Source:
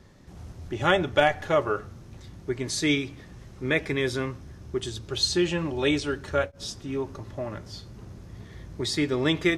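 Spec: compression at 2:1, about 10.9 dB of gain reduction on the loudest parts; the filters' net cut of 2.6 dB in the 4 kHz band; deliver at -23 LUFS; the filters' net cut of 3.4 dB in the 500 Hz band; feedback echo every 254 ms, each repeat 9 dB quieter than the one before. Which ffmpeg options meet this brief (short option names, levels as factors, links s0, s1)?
-af "equalizer=f=500:t=o:g=-4.5,equalizer=f=4000:t=o:g=-3,acompressor=threshold=0.0126:ratio=2,aecho=1:1:254|508|762|1016:0.355|0.124|0.0435|0.0152,volume=5.01"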